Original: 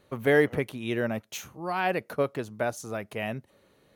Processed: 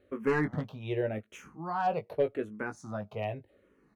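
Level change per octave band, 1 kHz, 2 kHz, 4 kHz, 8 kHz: -1.5 dB, -8.0 dB, -10.5 dB, under -10 dB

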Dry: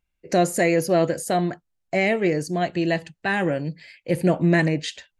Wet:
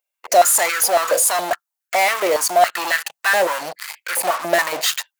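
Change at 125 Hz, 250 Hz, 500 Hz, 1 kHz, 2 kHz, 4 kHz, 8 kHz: under -20 dB, -13.0 dB, +2.5 dB, +9.5 dB, +6.5 dB, +10.5 dB, +16.5 dB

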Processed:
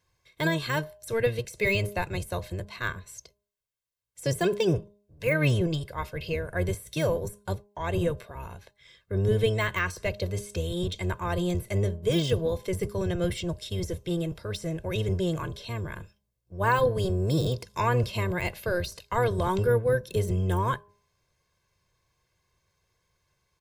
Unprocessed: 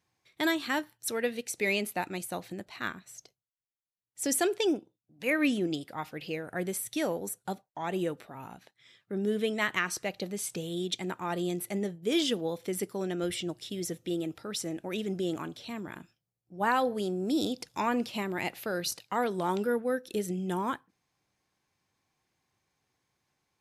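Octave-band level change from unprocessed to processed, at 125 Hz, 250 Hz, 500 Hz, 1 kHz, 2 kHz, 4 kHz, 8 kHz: +14.5 dB, 0.0 dB, +4.5 dB, +2.0 dB, +2.5 dB, 0.0 dB, -5.0 dB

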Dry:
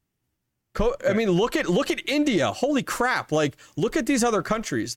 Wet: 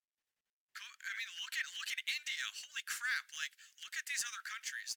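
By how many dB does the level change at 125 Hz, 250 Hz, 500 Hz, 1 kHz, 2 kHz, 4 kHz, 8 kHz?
under -40 dB, under -40 dB, under -40 dB, -25.0 dB, -9.5 dB, -8.5 dB, -9.0 dB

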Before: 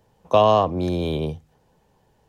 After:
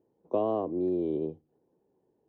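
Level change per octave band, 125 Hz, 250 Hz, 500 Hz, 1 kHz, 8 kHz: -17.0 dB, -4.5 dB, -9.5 dB, -17.0 dB, no reading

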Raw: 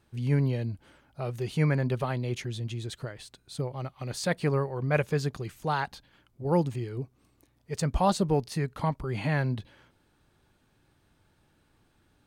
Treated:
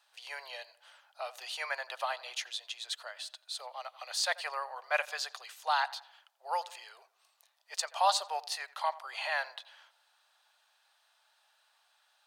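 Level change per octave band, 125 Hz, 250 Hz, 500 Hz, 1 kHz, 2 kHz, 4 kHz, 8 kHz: under -40 dB, under -40 dB, -10.5 dB, +0.5 dB, +1.0 dB, +6.0 dB, +2.5 dB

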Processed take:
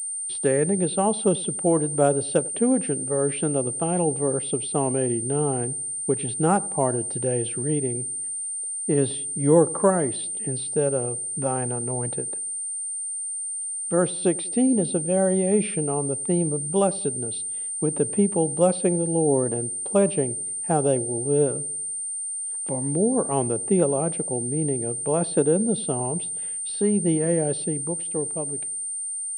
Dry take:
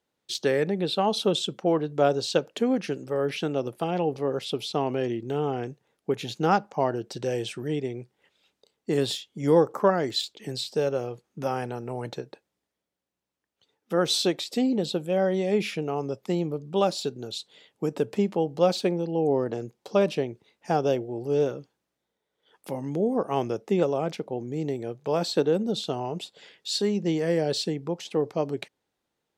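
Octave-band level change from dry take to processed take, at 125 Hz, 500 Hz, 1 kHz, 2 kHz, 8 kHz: +5.5 dB, +2.0 dB, +0.5 dB, -2.5 dB, +19.5 dB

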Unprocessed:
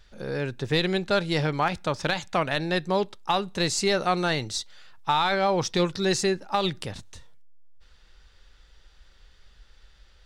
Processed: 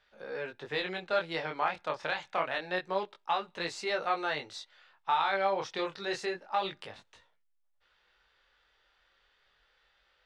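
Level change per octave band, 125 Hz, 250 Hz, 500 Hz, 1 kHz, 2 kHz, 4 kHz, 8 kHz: -20.5 dB, -15.0 dB, -7.5 dB, -5.0 dB, -5.0 dB, -10.0 dB, -18.0 dB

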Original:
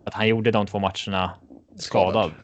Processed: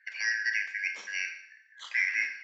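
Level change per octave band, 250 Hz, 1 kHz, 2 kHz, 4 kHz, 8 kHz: under -40 dB, -32.0 dB, +4.0 dB, -11.5 dB, no reading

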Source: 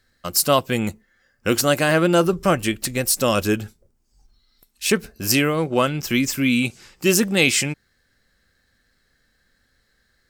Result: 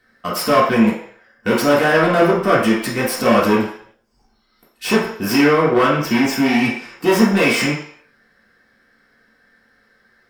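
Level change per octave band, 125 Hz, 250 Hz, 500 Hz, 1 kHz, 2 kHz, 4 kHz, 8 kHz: +0.5 dB, +5.5 dB, +5.0 dB, +7.0 dB, +4.5 dB, -1.0 dB, -7.0 dB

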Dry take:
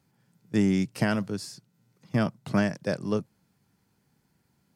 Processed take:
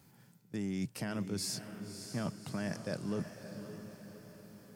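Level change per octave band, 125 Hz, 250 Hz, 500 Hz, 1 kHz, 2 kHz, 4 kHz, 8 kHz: -10.0 dB, -11.0 dB, -10.5 dB, -11.5 dB, -11.5 dB, -3.0 dB, +2.0 dB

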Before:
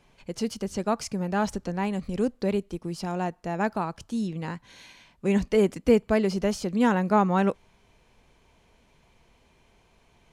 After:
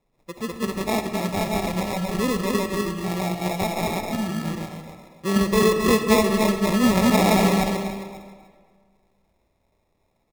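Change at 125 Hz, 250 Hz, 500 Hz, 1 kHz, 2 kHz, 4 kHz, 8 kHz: +5.0 dB, +4.5 dB, +3.0 dB, +4.0 dB, +7.0 dB, +11.5 dB, +10.5 dB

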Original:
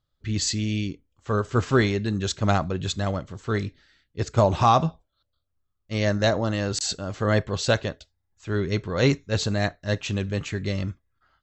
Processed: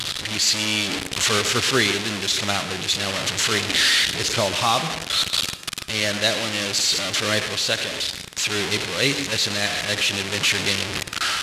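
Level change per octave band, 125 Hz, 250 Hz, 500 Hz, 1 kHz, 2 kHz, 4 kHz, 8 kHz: -7.5 dB, -3.0 dB, -1.5 dB, -0.5 dB, +9.5 dB, +14.0 dB, +11.0 dB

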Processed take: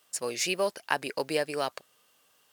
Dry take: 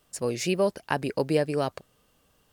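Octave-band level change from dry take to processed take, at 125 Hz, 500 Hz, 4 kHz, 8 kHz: -14.5 dB, -4.5 dB, +3.0 dB, +3.5 dB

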